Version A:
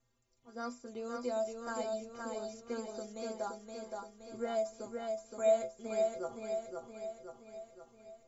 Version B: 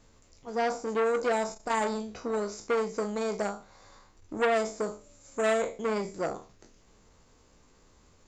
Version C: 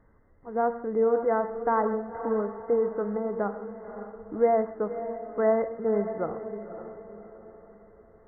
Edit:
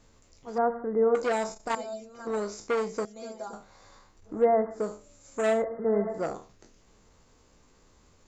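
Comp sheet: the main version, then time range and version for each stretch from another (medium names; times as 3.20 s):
B
0.58–1.15 s: from C
1.75–2.27 s: from A
3.05–3.53 s: from A
4.34–4.82 s: from C, crossfade 0.24 s
5.53–6.20 s: from C, crossfade 0.24 s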